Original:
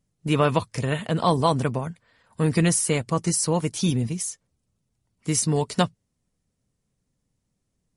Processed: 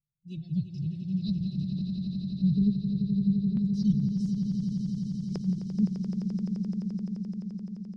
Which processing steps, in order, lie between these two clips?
elliptic band-stop 180–5200 Hz, stop band 80 dB; de-hum 48.4 Hz, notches 37; spectral noise reduction 17 dB; formant-preserving pitch shift +3 st; LFO low-pass square 0.28 Hz 390–4900 Hz; distance through air 460 m; echo with a slow build-up 86 ms, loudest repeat 8, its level -10 dB; trim +3 dB

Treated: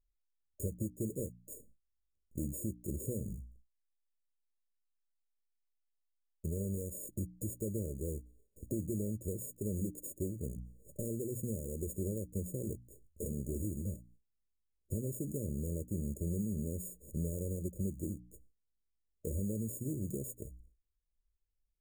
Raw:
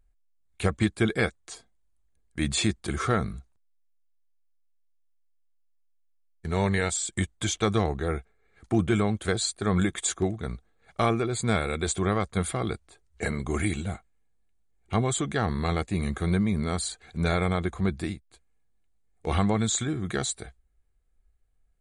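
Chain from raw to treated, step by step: sorted samples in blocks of 32 samples; hum notches 60/120/180/240/300 Hz; gate with hold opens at -54 dBFS; compression 4:1, threshold -42 dBFS, peak gain reduction 19.5 dB; hard clipper -34 dBFS, distortion -21 dB; brick-wall FIR band-stop 610–6600 Hz; trim +6 dB

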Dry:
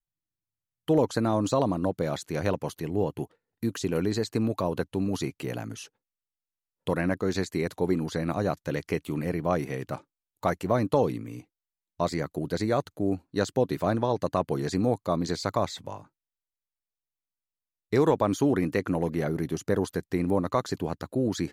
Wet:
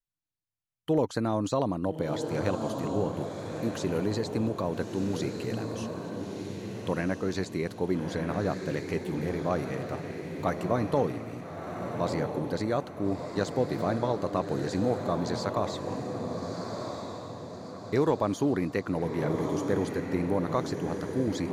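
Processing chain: treble shelf 11 kHz -7 dB; echo that smears into a reverb 1308 ms, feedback 45%, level -5 dB; trim -3 dB

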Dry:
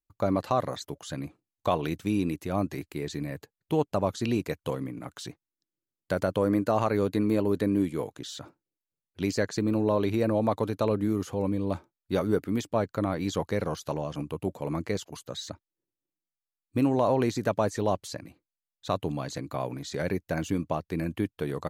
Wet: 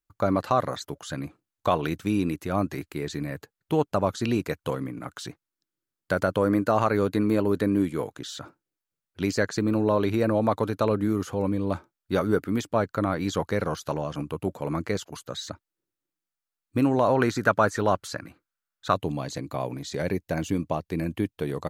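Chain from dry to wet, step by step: peaking EQ 1.4 kHz +6 dB 0.61 oct, from 17.15 s +15 dB, from 18.94 s -2.5 dB; trim +2 dB

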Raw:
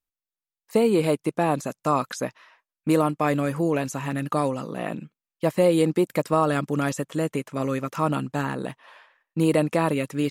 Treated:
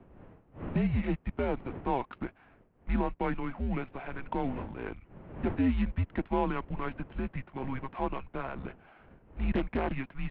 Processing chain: dead-time distortion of 0.093 ms; wind noise 390 Hz -37 dBFS; mistuned SSB -270 Hz 280–3200 Hz; 9.54–9.96 s: loudspeaker Doppler distortion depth 0.59 ms; trim -7 dB

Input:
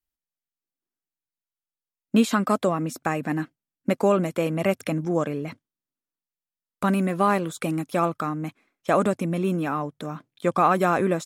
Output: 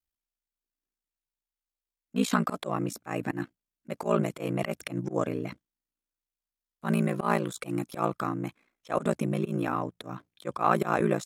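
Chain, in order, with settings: ring modulator 29 Hz; slow attack 108 ms

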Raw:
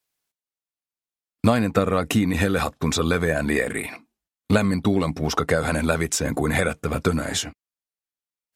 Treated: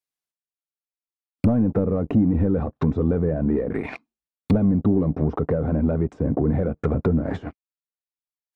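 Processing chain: waveshaping leveller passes 3; low-pass that closes with the level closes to 430 Hz, closed at -10 dBFS; trim -6.5 dB

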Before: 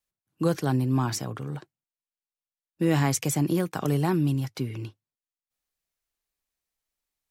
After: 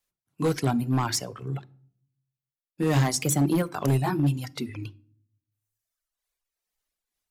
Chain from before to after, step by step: sawtooth pitch modulation -1.5 st, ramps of 808 ms; reverb removal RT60 1.5 s; hum notches 50/100/150/200/250/300/350 Hz; overload inside the chain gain 23 dB; on a send: reverberation RT60 0.60 s, pre-delay 7 ms, DRR 19.5 dB; on the sum: trim +5 dB

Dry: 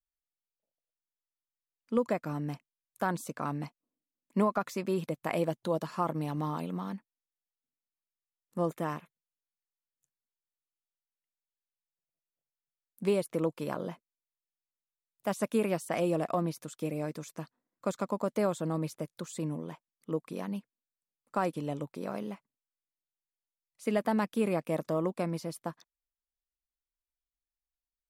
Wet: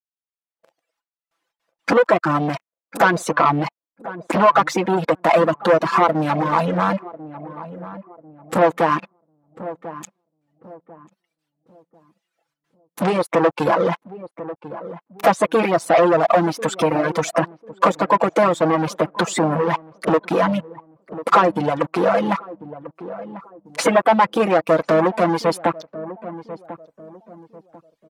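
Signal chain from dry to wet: coarse spectral quantiser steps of 15 dB; recorder AGC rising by 46 dB/s; gate with hold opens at -55 dBFS; comb 6 ms, depth 72%; in parallel at +3 dB: compression 12:1, threshold -41 dBFS, peak gain reduction 21.5 dB; on the sum: waveshaping leveller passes 5; saturation -9 dBFS, distortion -19 dB; band-pass filter 950 Hz, Q 0.78; on a send: filtered feedback delay 1044 ms, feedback 35%, low-pass 890 Hz, level -13 dB; on the sum: reverb removal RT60 0.94 s; trim +4 dB

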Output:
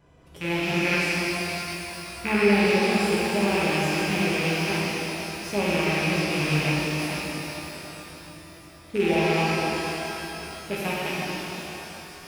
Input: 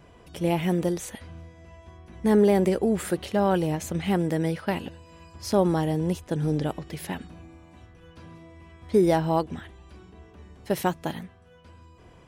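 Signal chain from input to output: rattle on loud lows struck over -30 dBFS, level -14 dBFS; 0.85–2.53 s: high-order bell 1.5 kHz +9.5 dB; pitch-shifted reverb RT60 3.7 s, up +12 st, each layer -8 dB, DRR -7 dB; trim -9 dB

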